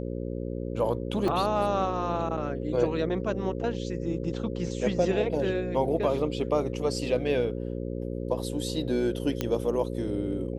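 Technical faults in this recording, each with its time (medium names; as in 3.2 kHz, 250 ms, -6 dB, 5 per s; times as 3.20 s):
buzz 60 Hz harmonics 9 -33 dBFS
1.28 s: dropout 3.1 ms
9.41 s: pop -13 dBFS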